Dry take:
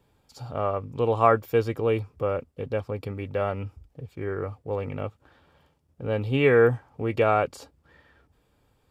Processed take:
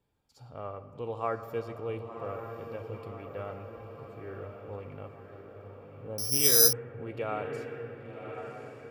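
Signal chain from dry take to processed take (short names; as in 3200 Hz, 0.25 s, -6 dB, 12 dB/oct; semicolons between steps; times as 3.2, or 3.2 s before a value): 5.86–6.22 spectral gain 1100–5900 Hz -14 dB; diffused feedback echo 1.084 s, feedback 56%, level -7 dB; on a send at -10 dB: reverb RT60 2.6 s, pre-delay 6 ms; 6.18–6.73 on the sum: careless resampling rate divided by 8×, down none, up zero stuff; gain -13 dB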